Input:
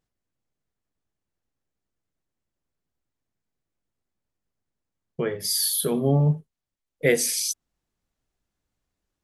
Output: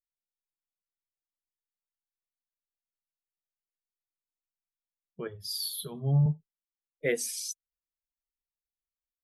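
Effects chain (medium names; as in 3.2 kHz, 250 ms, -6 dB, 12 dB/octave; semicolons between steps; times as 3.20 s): expander on every frequency bin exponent 1.5; 5.27–6.26 s: graphic EQ 125/250/500/2000/4000/8000 Hz +11/-11/-5/-11/+7/-9 dB; trim -7 dB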